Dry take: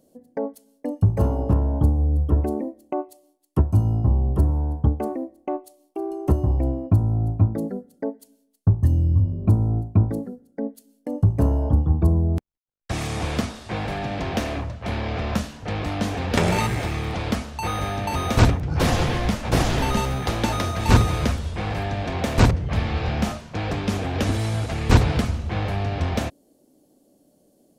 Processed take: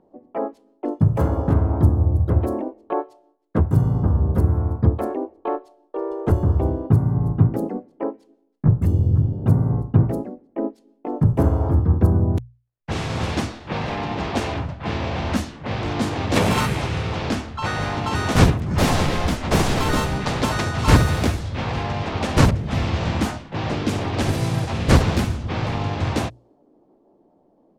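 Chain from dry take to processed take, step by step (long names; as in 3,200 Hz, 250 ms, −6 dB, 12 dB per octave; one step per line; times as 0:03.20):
pitch-shifted copies added +3 semitones −1 dB, +4 semitones −16 dB, +7 semitones −4 dB
low-pass that shuts in the quiet parts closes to 1,600 Hz, open at −14.5 dBFS
mains-hum notches 60/120 Hz
level −1.5 dB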